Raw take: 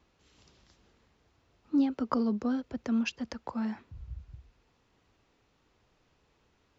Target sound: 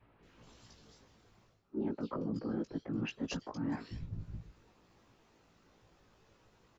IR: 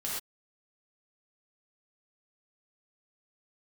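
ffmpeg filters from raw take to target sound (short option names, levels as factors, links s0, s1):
-filter_complex "[0:a]acontrast=74,afftfilt=real='hypot(re,im)*cos(2*PI*random(0))':imag='hypot(re,im)*sin(2*PI*random(1))':win_size=512:overlap=0.75,asplit=2[s0][s1];[s1]adelay=18,volume=0.668[s2];[s0][s2]amix=inputs=2:normalize=0,acrossover=split=2800[s3][s4];[s4]adelay=230[s5];[s3][s5]amix=inputs=2:normalize=0,areverse,acompressor=threshold=0.0112:ratio=8,areverse,adynamicequalizer=threshold=0.00224:dfrequency=360:dqfactor=0.71:tfrequency=360:tqfactor=0.71:attack=5:release=100:ratio=0.375:range=2.5:mode=boostabove:tftype=bell,volume=1.19"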